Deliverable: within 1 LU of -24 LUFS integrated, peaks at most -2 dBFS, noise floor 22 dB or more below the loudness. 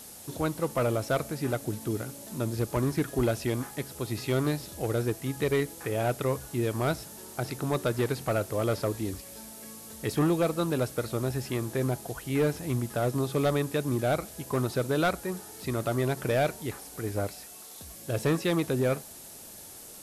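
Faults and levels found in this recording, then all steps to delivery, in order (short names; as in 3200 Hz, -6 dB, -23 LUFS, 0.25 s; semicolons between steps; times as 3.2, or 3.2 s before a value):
clipped 1.0%; flat tops at -19.5 dBFS; noise floor -46 dBFS; noise floor target -52 dBFS; loudness -30.0 LUFS; peak -19.5 dBFS; loudness target -24.0 LUFS
-> clip repair -19.5 dBFS; noise print and reduce 6 dB; gain +6 dB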